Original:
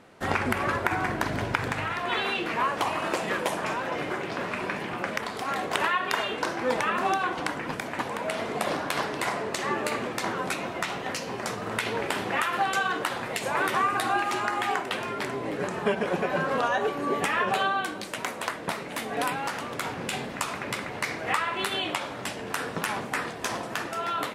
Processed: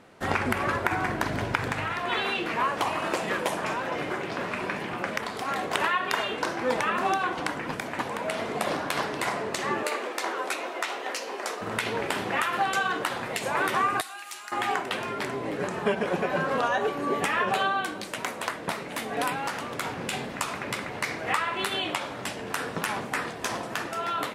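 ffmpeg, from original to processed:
-filter_complex "[0:a]asettb=1/sr,asplit=3[a][b][c];[a]atrim=end=9.834[d];[b]atrim=start=9.83:end=11.61,asetpts=PTS-STARTPTS,afade=t=in:d=0.004:c=qsin,afade=t=out:st=1.776:d=0.004:c=qsin,highpass=f=330:w=0.5412,highpass=f=330:w=1.3066[e];[c]atrim=start=11.606[f];[d][e]acrossfade=d=0.004:c1=hsin:c2=qsin[g];[g][f]acrossfade=d=0.004:c1=qsin:c2=hsin,asettb=1/sr,asplit=3[h][i][j];[h]atrim=end=14.014[k];[i]atrim=start=14.01:end=14.52,asetpts=PTS-STARTPTS,afade=t=in:d=0.004:c=qsin,afade=t=out:st=0.506:d=0.004:c=qsin,aderivative[l];[j]atrim=start=14.516[m];[k][l]acrossfade=d=0.004:c1=hsin:c2=qsin[n];[n][m]acrossfade=d=0.004:c1=qsin:c2=hsin"

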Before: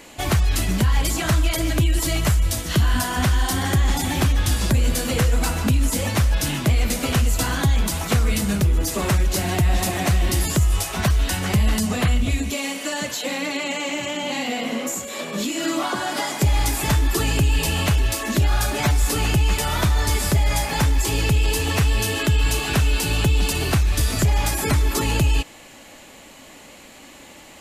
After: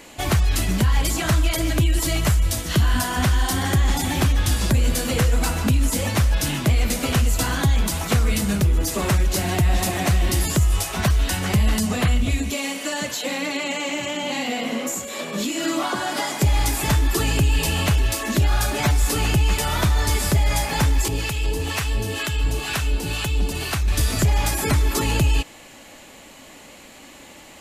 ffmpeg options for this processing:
-filter_complex "[0:a]asettb=1/sr,asplit=3[a][b][c];[a]atrim=end=21.084[d];[b]atrim=start=21.08:end=23.88,asetpts=PTS-STARTPTS,afade=t=in:d=0.004:c=qsin,afade=t=out:st=2.796:d=0.004:c=qsin,acrossover=split=730[e][f];[e]aeval=exprs='val(0)*(1-0.7/2+0.7/2*cos(2*PI*2.1*n/s))':c=same[g];[f]aeval=exprs='val(0)*(1-0.7/2-0.7/2*cos(2*PI*2.1*n/s))':c=same[h];[g][h]amix=inputs=2:normalize=0[i];[c]atrim=start=23.876[j];[d][i]acrossfade=d=0.004:c1=hsin:c2=qsin[k];[k][j]acrossfade=d=0.004:c1=qsin:c2=hsin"

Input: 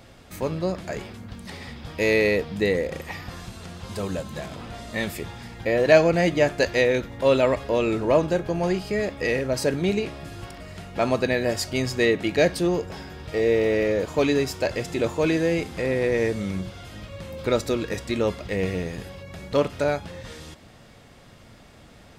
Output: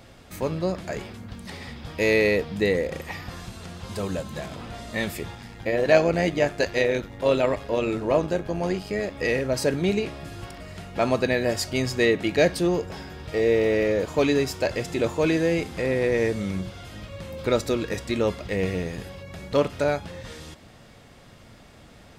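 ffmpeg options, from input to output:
-filter_complex "[0:a]asettb=1/sr,asplit=3[a][b][c];[a]atrim=end=5.354[d];[b]atrim=start=5.35:end=9.15,asetpts=PTS-STARTPTS,afade=t=in:d=0.004:c=qsin,afade=t=out:st=3.796:d=0.004:c=qsin,tremolo=f=99:d=0.519[e];[c]atrim=start=9.146[f];[d][e]acrossfade=d=0.004:c1=hsin:c2=qsin[g];[g][f]acrossfade=d=0.004:c1=qsin:c2=hsin"

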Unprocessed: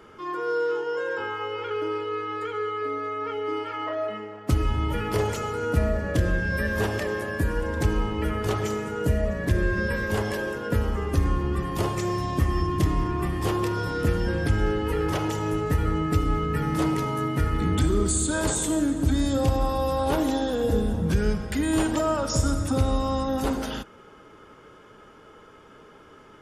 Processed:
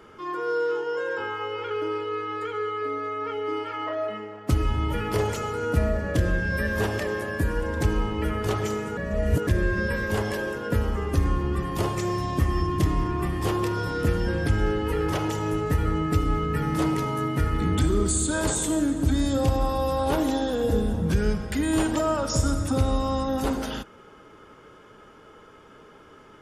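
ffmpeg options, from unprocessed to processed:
-filter_complex "[0:a]asplit=3[a][b][c];[a]atrim=end=8.972[d];[b]atrim=start=8.968:end=9.472,asetpts=PTS-STARTPTS,areverse[e];[c]atrim=start=9.468[f];[d][e]acrossfade=d=0.004:c1=hsin:c2=hsin[g];[g][f]acrossfade=d=0.004:c1=hsin:c2=hsin"

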